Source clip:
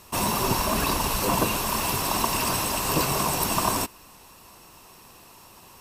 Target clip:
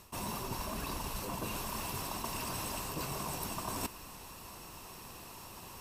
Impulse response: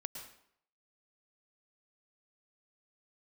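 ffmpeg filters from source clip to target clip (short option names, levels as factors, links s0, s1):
-af "lowshelf=f=180:g=4.5,areverse,acompressor=threshold=0.0178:ratio=16,areverse"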